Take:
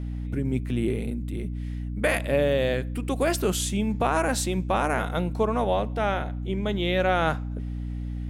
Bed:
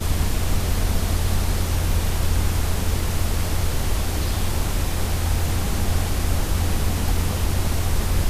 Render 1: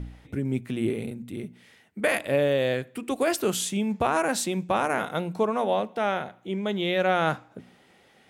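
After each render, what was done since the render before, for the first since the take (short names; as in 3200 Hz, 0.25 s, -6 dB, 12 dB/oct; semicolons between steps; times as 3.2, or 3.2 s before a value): de-hum 60 Hz, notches 5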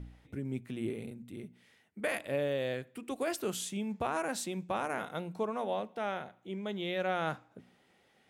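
gain -9.5 dB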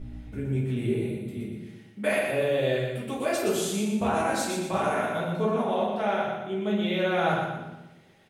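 feedback echo 0.12 s, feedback 42%, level -5 dB; shoebox room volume 95 m³, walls mixed, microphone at 1.5 m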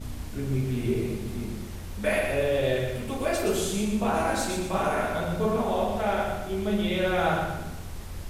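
add bed -17 dB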